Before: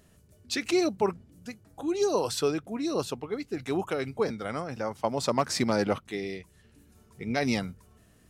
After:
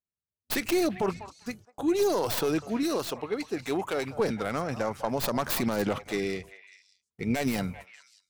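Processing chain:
stylus tracing distortion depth 0.3 ms
noise gate −49 dBFS, range −47 dB
brickwall limiter −22 dBFS, peak gain reduction 9 dB
0:02.83–0:04.13: low-shelf EQ 210 Hz −9 dB
echo through a band-pass that steps 197 ms, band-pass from 820 Hz, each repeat 1.4 octaves, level −10 dB
level +4.5 dB

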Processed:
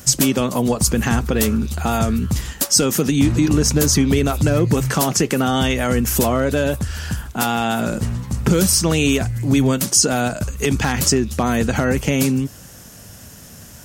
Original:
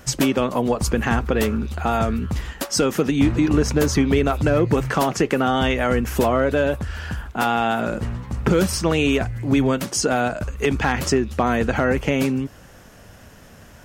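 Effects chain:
high-pass filter 130 Hz 6 dB per octave
bass and treble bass +10 dB, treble +15 dB
in parallel at +0.5 dB: brickwall limiter −8 dBFS, peak gain reduction 10.5 dB
on the sum: level −6.5 dB

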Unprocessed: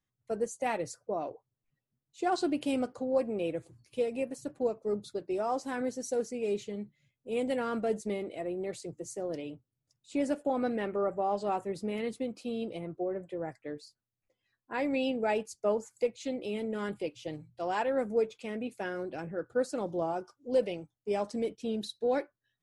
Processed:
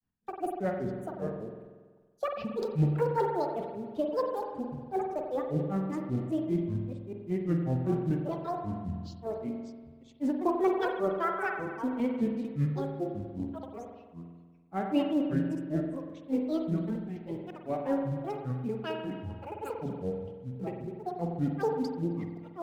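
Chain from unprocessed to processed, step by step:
delay that plays each chunk backwards 324 ms, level −9 dB
low-pass filter 1,800 Hz 6 dB per octave
low-shelf EQ 77 Hz +8.5 dB
notch filter 640 Hz, Q 12
hollow resonant body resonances 240/890 Hz, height 10 dB, ringing for 25 ms
in parallel at −12 dB: floating-point word with a short mantissa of 2 bits
on the sum: granular cloud 140 ms, grains 5.1 per second, spray 13 ms, pitch spread up and down by 12 semitones
spring reverb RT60 1.5 s, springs 47 ms, chirp 45 ms, DRR 6.5 dB
transient designer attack −4 dB, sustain +4 dB

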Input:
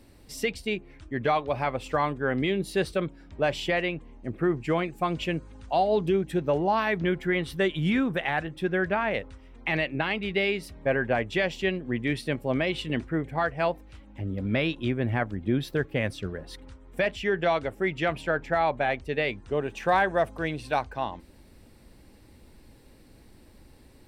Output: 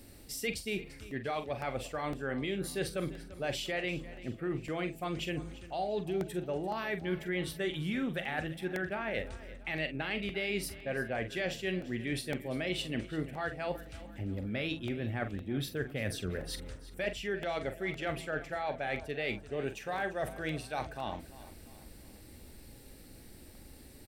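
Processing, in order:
high-shelf EQ 6,900 Hz +11.5 dB
reversed playback
downward compressor, threshold −32 dBFS, peak gain reduction 13.5 dB
reversed playback
parametric band 1,000 Hz −9 dB 0.23 octaves
double-tracking delay 44 ms −10 dB
hum removal 164.7 Hz, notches 4
on a send: repeating echo 343 ms, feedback 46%, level −17 dB
on the sum: regular buffer underruns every 0.51 s, samples 64, repeat, from 0:00.60

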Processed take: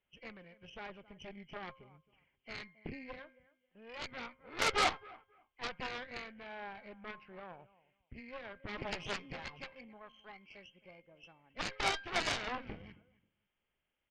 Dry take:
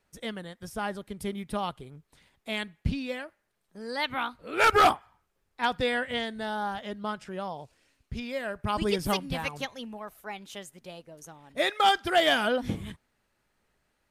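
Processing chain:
hearing-aid frequency compression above 2,000 Hz 4 to 1
tuned comb filter 530 Hz, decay 0.45 s, mix 70%
repeating echo 269 ms, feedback 19%, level −20 dB
harmonic generator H 3 −12 dB, 5 −27 dB, 7 −18 dB, 8 −21 dB, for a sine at −18 dBFS
level +3.5 dB

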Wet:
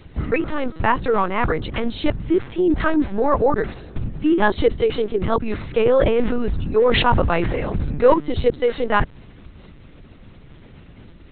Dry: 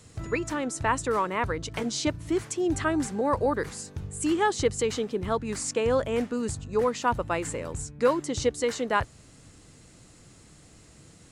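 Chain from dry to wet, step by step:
low-shelf EQ 180 Hz +6 dB
linear-prediction vocoder at 8 kHz pitch kept
0:05.57–0:08.14: level that may fall only so fast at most 23 dB per second
level +7 dB

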